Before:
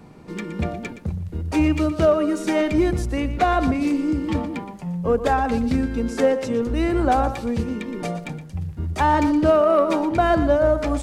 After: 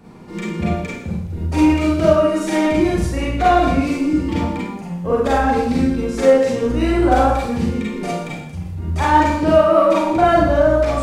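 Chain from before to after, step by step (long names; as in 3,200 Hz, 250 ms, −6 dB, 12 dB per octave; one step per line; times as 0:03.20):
four-comb reverb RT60 0.6 s, combs from 33 ms, DRR −6 dB
level −2 dB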